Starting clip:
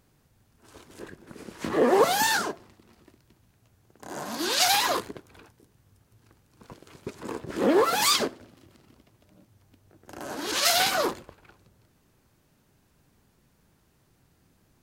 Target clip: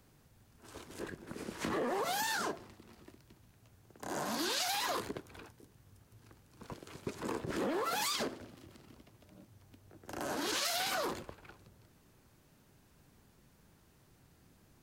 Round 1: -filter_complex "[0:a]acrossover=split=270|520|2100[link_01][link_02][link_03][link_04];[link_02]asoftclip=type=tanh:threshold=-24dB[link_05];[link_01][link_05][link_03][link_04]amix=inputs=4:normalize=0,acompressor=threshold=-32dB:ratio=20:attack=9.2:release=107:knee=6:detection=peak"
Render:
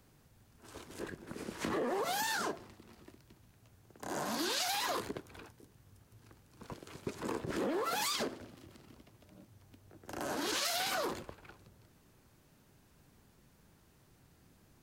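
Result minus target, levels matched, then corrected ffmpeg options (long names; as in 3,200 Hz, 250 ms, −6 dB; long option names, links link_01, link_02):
soft clipping: distortion −8 dB
-filter_complex "[0:a]acrossover=split=270|520|2100[link_01][link_02][link_03][link_04];[link_02]asoftclip=type=tanh:threshold=-33dB[link_05];[link_01][link_05][link_03][link_04]amix=inputs=4:normalize=0,acompressor=threshold=-32dB:ratio=20:attack=9.2:release=107:knee=6:detection=peak"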